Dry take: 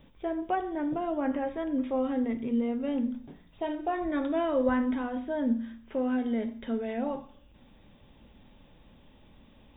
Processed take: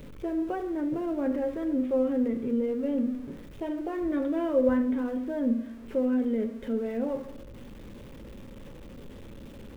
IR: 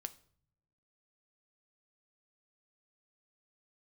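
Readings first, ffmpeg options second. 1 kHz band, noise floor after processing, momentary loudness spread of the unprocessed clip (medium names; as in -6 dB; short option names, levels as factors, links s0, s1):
-6.5 dB, -45 dBFS, 7 LU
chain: -filter_complex "[0:a]aeval=exprs='val(0)+0.5*0.00944*sgn(val(0))':c=same,asplit=2[s0][s1];[s1]lowshelf=f=670:t=q:w=3:g=7[s2];[1:a]atrim=start_sample=2205,asetrate=22050,aresample=44100,lowpass=2900[s3];[s2][s3]afir=irnorm=-1:irlink=0,volume=0.708[s4];[s0][s4]amix=inputs=2:normalize=0,volume=0.398"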